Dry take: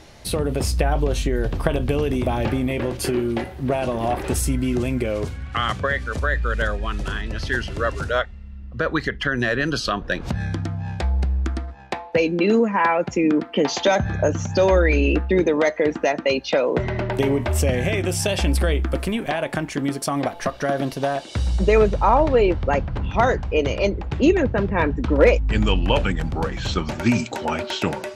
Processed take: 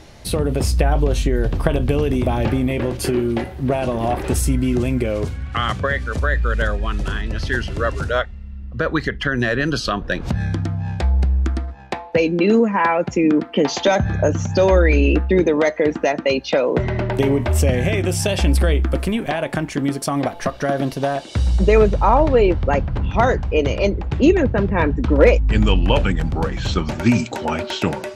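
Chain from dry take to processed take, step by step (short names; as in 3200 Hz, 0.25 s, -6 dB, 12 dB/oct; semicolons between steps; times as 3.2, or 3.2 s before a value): low shelf 340 Hz +3.5 dB; gain +1 dB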